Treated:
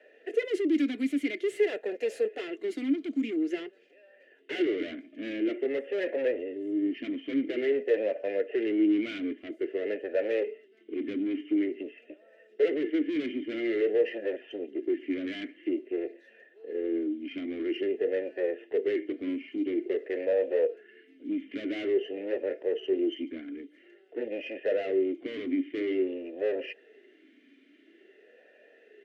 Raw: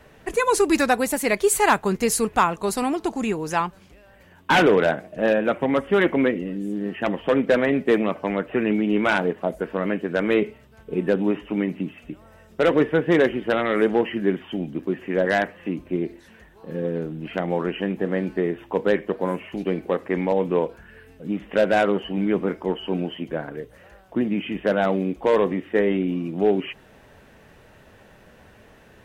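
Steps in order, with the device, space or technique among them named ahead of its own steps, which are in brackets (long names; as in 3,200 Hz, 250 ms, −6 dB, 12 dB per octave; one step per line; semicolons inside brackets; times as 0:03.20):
Butterworth high-pass 220 Hz 48 dB per octave
comb filter 2.9 ms, depth 45%
talk box (tube saturation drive 25 dB, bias 0.5; formant filter swept between two vowels e-i 0.49 Hz)
dynamic equaliser 550 Hz, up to +7 dB, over −52 dBFS, Q 2.1
level +6 dB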